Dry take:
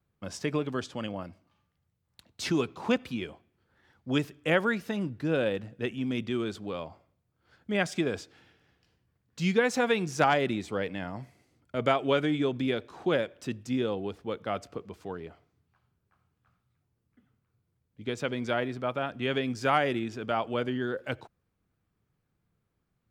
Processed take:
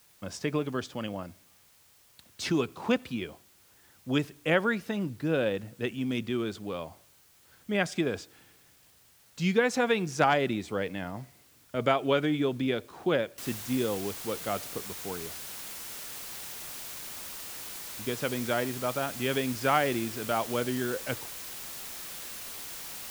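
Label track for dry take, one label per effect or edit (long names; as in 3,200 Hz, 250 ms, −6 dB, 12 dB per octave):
5.730000	6.180000	high-shelf EQ 9,500 Hz → 5,400 Hz +8.5 dB
13.380000	13.380000	noise floor change −61 dB −41 dB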